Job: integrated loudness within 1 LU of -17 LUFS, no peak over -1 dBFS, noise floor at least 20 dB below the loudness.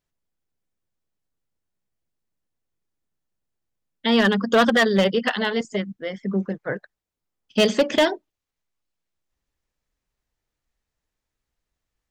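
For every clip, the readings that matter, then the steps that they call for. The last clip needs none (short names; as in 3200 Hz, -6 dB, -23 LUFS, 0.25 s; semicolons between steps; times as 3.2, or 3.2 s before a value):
clipped 0.3%; flat tops at -11.0 dBFS; loudness -21.5 LUFS; peak -11.0 dBFS; loudness target -17.0 LUFS
-> clip repair -11 dBFS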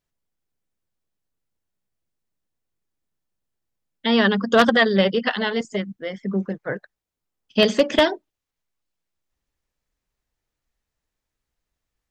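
clipped 0.0%; loudness -20.5 LUFS; peak -2.0 dBFS; loudness target -17.0 LUFS
-> gain +3.5 dB; limiter -1 dBFS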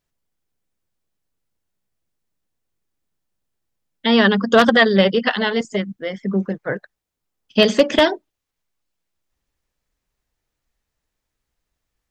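loudness -17.0 LUFS; peak -1.0 dBFS; noise floor -81 dBFS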